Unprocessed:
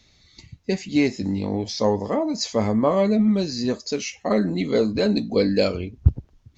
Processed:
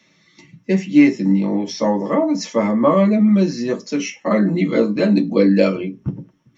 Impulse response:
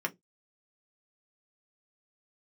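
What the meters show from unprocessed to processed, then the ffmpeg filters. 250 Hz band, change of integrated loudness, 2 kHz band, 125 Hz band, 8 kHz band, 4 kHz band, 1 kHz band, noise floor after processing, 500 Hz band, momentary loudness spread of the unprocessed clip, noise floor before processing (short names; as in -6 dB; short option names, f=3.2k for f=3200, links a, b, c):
+7.0 dB, +5.5 dB, +5.5 dB, +3.0 dB, n/a, -2.5 dB, +5.0 dB, -58 dBFS, +3.5 dB, 8 LU, -59 dBFS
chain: -filter_complex "[1:a]atrim=start_sample=2205[a];[0:a][a]afir=irnorm=-1:irlink=0"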